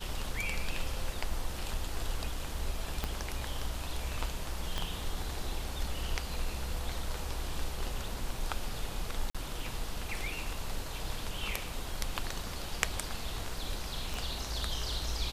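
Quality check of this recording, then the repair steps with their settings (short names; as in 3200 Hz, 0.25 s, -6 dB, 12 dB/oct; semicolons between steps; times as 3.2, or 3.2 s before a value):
3.04 pop -17 dBFS
4.78 pop -19 dBFS
9.3–9.35 gap 46 ms
14.14 pop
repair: de-click; interpolate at 9.3, 46 ms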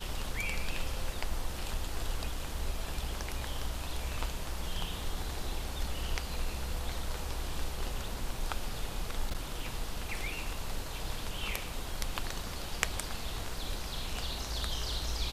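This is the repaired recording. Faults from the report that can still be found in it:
3.04 pop
4.78 pop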